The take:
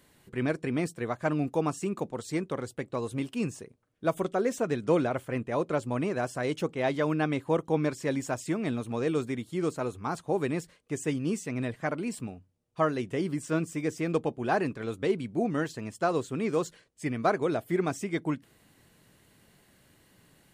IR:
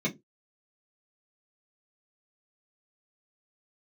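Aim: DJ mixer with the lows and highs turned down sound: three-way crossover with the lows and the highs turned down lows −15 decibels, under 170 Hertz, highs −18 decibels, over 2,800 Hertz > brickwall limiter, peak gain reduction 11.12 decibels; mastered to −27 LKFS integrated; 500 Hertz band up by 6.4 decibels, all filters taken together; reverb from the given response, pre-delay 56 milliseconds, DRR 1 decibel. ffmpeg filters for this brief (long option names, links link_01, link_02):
-filter_complex "[0:a]equalizer=frequency=500:width_type=o:gain=8,asplit=2[link_01][link_02];[1:a]atrim=start_sample=2205,adelay=56[link_03];[link_02][link_03]afir=irnorm=-1:irlink=0,volume=-9dB[link_04];[link_01][link_04]amix=inputs=2:normalize=0,acrossover=split=170 2800:gain=0.178 1 0.126[link_05][link_06][link_07];[link_05][link_06][link_07]amix=inputs=3:normalize=0,volume=-3dB,alimiter=limit=-17dB:level=0:latency=1"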